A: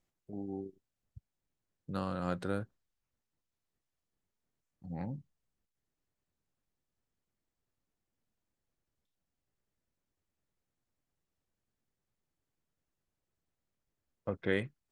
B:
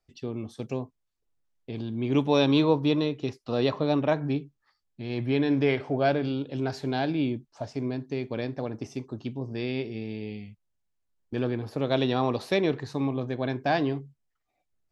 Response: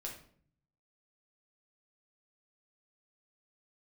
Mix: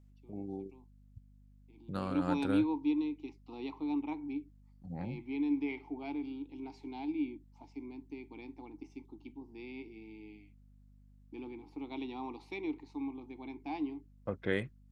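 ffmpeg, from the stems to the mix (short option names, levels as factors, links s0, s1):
-filter_complex "[0:a]aeval=exprs='val(0)+0.00126*(sin(2*PI*50*n/s)+sin(2*PI*2*50*n/s)/2+sin(2*PI*3*50*n/s)/3+sin(2*PI*4*50*n/s)/4+sin(2*PI*5*50*n/s)/5)':c=same,volume=0.891[s0];[1:a]asplit=3[s1][s2][s3];[s1]bandpass=f=300:t=q:w=8,volume=1[s4];[s2]bandpass=f=870:t=q:w=8,volume=0.501[s5];[s3]bandpass=f=2240:t=q:w=8,volume=0.355[s6];[s4][s5][s6]amix=inputs=3:normalize=0,bass=f=250:g=-10,treble=f=4000:g=11,volume=0.891,afade=t=in:st=1.72:d=0.6:silence=0.237137[s7];[s0][s7]amix=inputs=2:normalize=0"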